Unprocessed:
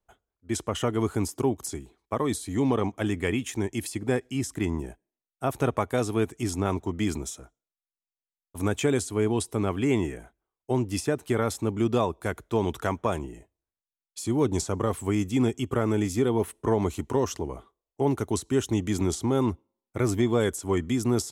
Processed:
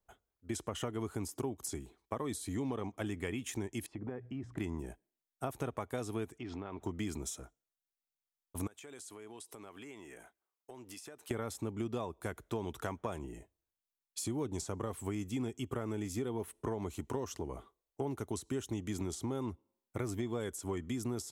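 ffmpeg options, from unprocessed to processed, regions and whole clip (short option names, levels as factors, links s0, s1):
-filter_complex "[0:a]asettb=1/sr,asplit=3[s0][s1][s2];[s0]atrim=end=3.864[s3];[s1]atrim=start=3.86:end=4.58,asetpts=PTS-STARTPTS,afade=t=in:d=0.004:c=qsin,afade=t=out:st=0.716:d=0.004:c=qsin,bandreject=f=60:t=h:w=6,bandreject=f=120:t=h:w=6,bandreject=f=180:t=h:w=6,acompressor=threshold=0.02:ratio=5:attack=3.2:release=140:knee=1:detection=peak,lowpass=1500[s4];[s2]atrim=start=4.576[s5];[s3][s4]acrossfade=d=0.004:c1=hsin:c2=qsin[s6];[s6][s5]acrossfade=d=0.004:c1=qsin:c2=hsin,asettb=1/sr,asplit=3[s7][s8][s9];[s7]atrim=end=6.384[s10];[s8]atrim=start=6.38:end=6.82,asetpts=PTS-STARTPTS,afade=t=in:d=0.004:c=qsin,afade=t=out:st=0.436:d=0.004:c=qsin,lowpass=f=3500:w=0.5412,lowpass=f=3500:w=1.3066,lowshelf=f=170:g=-9.5,acompressor=threshold=0.02:ratio=10:attack=3.2:release=140:knee=1:detection=peak[s11];[s9]atrim=start=6.816[s12];[s10][s11]acrossfade=d=0.004:c1=hsin:c2=qsin[s13];[s13][s12]acrossfade=d=0.004:c1=qsin:c2=hsin,asettb=1/sr,asplit=3[s14][s15][s16];[s14]atrim=end=8.674[s17];[s15]atrim=start=8.67:end=11.31,asetpts=PTS-STARTPTS,afade=t=in:d=0.004:c=qsin,afade=t=out:st=2.636:d=0.004:c=qsin,highpass=f=730:p=1,acompressor=threshold=0.00631:ratio=8:attack=3.2:release=140:knee=1:detection=peak[s18];[s16]atrim=start=11.306[s19];[s17][s18]acrossfade=d=0.004:c1=hsin:c2=qsin[s20];[s20][s19]acrossfade=d=0.004:c1=qsin:c2=hsin,highshelf=f=12000:g=5,acompressor=threshold=0.0224:ratio=4,volume=0.75"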